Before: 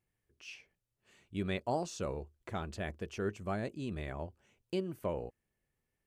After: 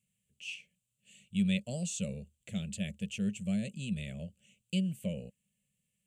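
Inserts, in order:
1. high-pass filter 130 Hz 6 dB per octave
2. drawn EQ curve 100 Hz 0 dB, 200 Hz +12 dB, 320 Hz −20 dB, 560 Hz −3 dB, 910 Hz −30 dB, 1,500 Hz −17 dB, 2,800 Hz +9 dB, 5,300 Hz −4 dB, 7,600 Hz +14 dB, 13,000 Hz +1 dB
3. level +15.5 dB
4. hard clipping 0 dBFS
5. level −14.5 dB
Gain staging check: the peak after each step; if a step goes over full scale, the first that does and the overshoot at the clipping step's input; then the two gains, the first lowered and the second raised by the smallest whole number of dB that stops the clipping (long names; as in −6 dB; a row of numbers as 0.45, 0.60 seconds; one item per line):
−21.5, −21.0, −5.5, −5.5, −20.0 dBFS
no step passes full scale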